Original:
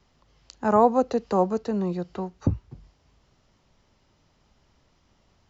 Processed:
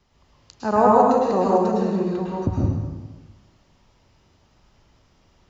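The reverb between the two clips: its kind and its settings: plate-style reverb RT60 1.3 s, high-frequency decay 0.8×, pre-delay 95 ms, DRR -5 dB; trim -1 dB

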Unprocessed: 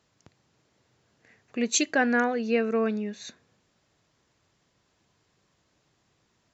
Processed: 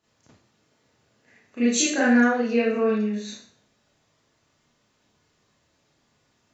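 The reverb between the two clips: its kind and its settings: Schroeder reverb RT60 0.49 s, combs from 26 ms, DRR -9.5 dB; trim -7 dB

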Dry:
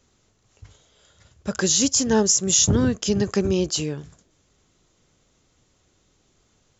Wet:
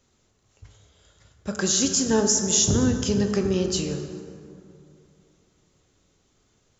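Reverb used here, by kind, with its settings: plate-style reverb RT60 2.7 s, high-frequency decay 0.45×, DRR 5 dB; trim -3 dB

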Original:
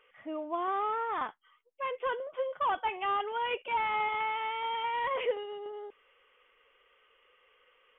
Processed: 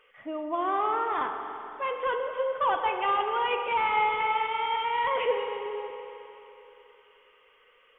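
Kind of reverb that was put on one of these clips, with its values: spring tank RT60 3.3 s, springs 43/49 ms, chirp 75 ms, DRR 4.5 dB; trim +3.5 dB

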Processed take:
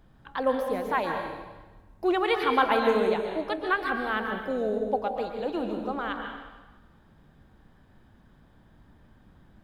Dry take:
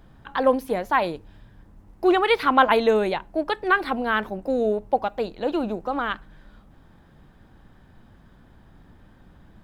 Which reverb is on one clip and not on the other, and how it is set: plate-style reverb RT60 1.2 s, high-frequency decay 0.9×, pre-delay 110 ms, DRR 3.5 dB; trim -6.5 dB

